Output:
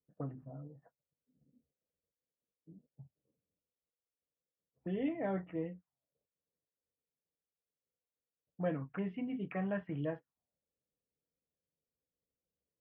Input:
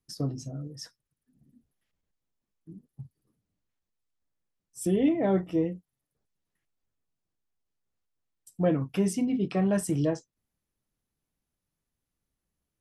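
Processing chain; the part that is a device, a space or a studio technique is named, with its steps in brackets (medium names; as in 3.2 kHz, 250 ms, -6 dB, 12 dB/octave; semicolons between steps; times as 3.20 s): envelope filter bass rig (touch-sensitive low-pass 490–3200 Hz up, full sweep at -24 dBFS; cabinet simulation 73–2100 Hz, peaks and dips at 110 Hz -7 dB, 220 Hz -4 dB, 360 Hz -7 dB, 1.7 kHz +3 dB); trim -9 dB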